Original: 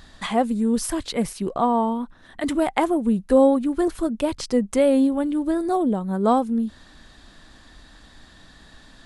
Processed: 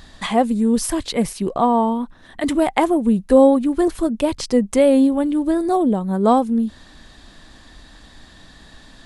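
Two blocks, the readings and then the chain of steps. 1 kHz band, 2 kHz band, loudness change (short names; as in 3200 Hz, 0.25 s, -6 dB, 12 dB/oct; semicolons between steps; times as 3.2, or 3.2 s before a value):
+3.5 dB, +3.5 dB, +4.0 dB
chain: bell 1400 Hz -3.5 dB 0.37 oct; gain +4 dB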